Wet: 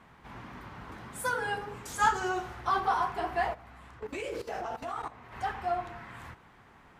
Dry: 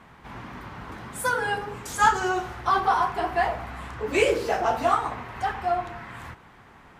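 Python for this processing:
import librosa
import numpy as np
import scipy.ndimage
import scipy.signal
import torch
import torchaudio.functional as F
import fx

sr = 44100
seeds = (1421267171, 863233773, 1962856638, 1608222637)

y = fx.level_steps(x, sr, step_db=15, at=(3.53, 5.31), fade=0.02)
y = F.gain(torch.from_numpy(y), -6.0).numpy()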